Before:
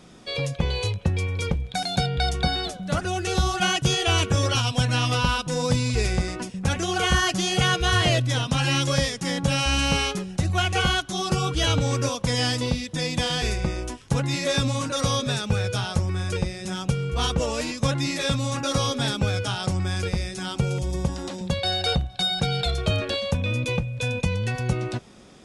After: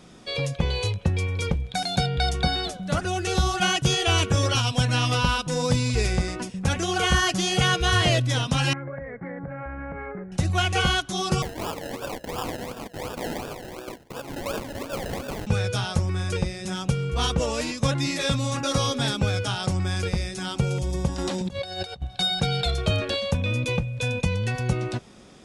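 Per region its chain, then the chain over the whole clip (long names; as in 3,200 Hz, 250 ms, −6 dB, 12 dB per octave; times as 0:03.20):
0:08.73–0:10.32: Chebyshev low-pass with heavy ripple 2,200 Hz, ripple 6 dB + downward compressor 10 to 1, threshold −30 dBFS
0:11.42–0:15.47: downward compressor 2.5 to 1, threshold −26 dBFS + high-pass filter 410 Hz + sample-and-hold swept by an LFO 30×, swing 60% 2.8 Hz
0:21.18–0:22.02: double-tracking delay 16 ms −11 dB + compressor whose output falls as the input rises −30 dBFS, ratio −0.5
whole clip: no processing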